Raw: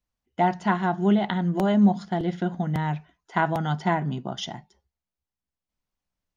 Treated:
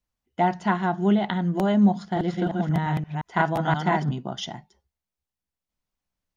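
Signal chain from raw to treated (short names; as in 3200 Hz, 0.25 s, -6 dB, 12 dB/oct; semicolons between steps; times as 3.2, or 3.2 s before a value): 1.99–4.11 reverse delay 0.175 s, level -2 dB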